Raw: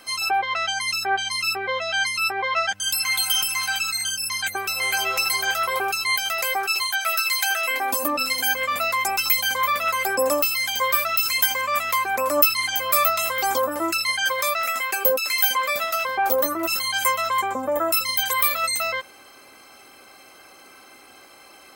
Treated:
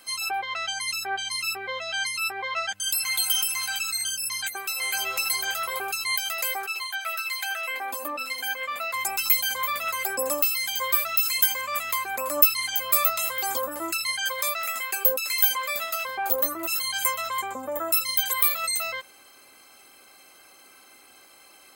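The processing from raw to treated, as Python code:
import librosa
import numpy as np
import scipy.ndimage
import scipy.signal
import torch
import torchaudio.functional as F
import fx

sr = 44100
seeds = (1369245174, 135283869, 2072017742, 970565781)

y = fx.highpass(x, sr, hz=320.0, slope=6, at=(4.46, 4.95))
y = fx.bass_treble(y, sr, bass_db=-12, treble_db=-10, at=(6.66, 8.94))
y = fx.high_shelf(y, sr, hz=3200.0, db=8.5)
y = fx.notch(y, sr, hz=5600.0, q=5.7)
y = y * librosa.db_to_amplitude(-8.0)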